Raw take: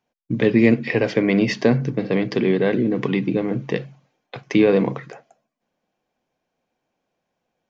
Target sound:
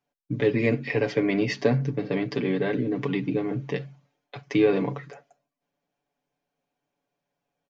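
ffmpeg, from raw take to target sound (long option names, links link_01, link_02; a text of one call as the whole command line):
ffmpeg -i in.wav -af "aecho=1:1:7:0.79,volume=-7.5dB" out.wav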